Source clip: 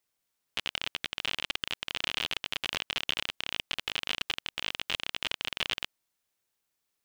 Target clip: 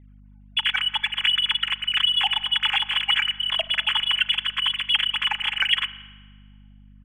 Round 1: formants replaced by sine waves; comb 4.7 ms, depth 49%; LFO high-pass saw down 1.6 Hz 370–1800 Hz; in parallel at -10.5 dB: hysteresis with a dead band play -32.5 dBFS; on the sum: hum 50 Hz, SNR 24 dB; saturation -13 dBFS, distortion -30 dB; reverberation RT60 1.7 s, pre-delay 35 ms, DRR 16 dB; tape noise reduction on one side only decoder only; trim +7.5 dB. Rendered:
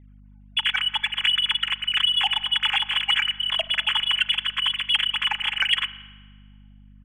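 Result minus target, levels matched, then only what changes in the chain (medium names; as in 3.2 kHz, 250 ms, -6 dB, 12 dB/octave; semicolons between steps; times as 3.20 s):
saturation: distortion +17 dB
change: saturation -4 dBFS, distortion -47 dB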